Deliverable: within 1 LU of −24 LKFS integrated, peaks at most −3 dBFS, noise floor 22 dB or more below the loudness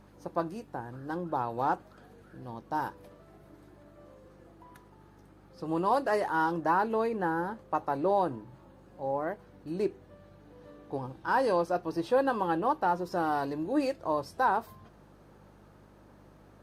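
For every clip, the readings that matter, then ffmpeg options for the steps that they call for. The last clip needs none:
mains hum 50 Hz; hum harmonics up to 200 Hz; level of the hum −58 dBFS; integrated loudness −31.0 LKFS; sample peak −14.5 dBFS; target loudness −24.0 LKFS
→ -af "bandreject=frequency=50:width_type=h:width=4,bandreject=frequency=100:width_type=h:width=4,bandreject=frequency=150:width_type=h:width=4,bandreject=frequency=200:width_type=h:width=4"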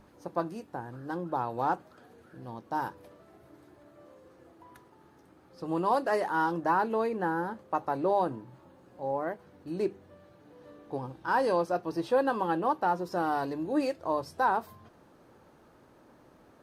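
mains hum none found; integrated loudness −31.0 LKFS; sample peak −14.5 dBFS; target loudness −24.0 LKFS
→ -af "volume=7dB"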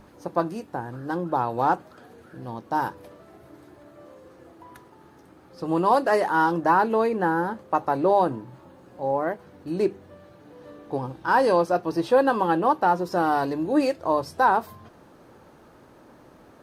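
integrated loudness −24.0 LKFS; sample peak −7.5 dBFS; background noise floor −52 dBFS

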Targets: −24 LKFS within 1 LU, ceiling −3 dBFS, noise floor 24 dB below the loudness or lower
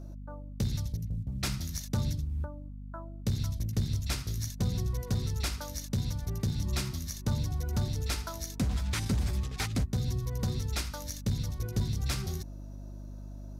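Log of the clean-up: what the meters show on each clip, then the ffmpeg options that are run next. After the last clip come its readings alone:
mains hum 50 Hz; hum harmonics up to 250 Hz; level of the hum −39 dBFS; integrated loudness −33.5 LKFS; sample peak −21.0 dBFS; target loudness −24.0 LKFS
→ -af "bandreject=frequency=50:width_type=h:width=4,bandreject=frequency=100:width_type=h:width=4,bandreject=frequency=150:width_type=h:width=4,bandreject=frequency=200:width_type=h:width=4,bandreject=frequency=250:width_type=h:width=4"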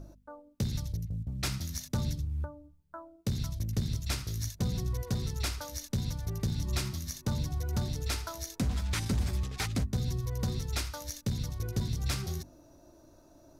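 mains hum none found; integrated loudness −34.5 LKFS; sample peak −21.5 dBFS; target loudness −24.0 LKFS
→ -af "volume=10.5dB"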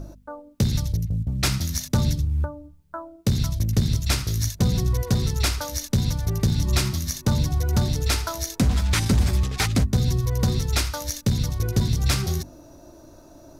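integrated loudness −24.0 LKFS; sample peak −11.0 dBFS; background noise floor −49 dBFS

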